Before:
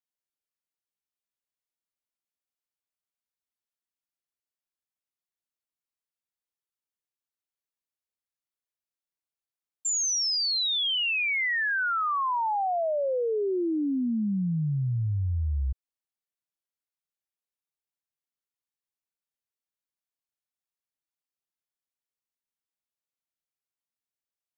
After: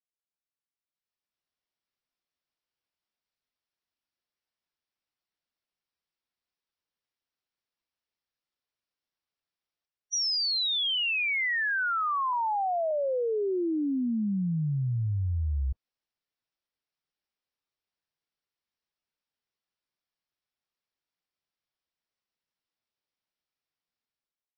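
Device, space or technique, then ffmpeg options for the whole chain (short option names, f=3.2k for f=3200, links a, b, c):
low-bitrate web radio: -filter_complex "[0:a]asettb=1/sr,asplit=3[a][b][c];[a]atrim=end=12.334[d];[b]atrim=start=12.33:end=12.91,asetpts=PTS-STARTPTS,afade=t=in:d=0.004:c=qsin,afade=t=out:st=0.576:d=0.004:c=qsin,lowpass=1.5k[e];[c]atrim=start=12.906[f];[d][e]acrossfade=d=0.004:c1=hsin:c2=qsin[g];[g][f]acrossfade=d=0.004:c1=qsin:c2=hsin,dynaudnorm=f=750:g=3:m=12dB,alimiter=limit=-17dB:level=0:latency=1:release=65,volume=-7.5dB" -ar 22050 -c:a libmp3lame -b:a 24k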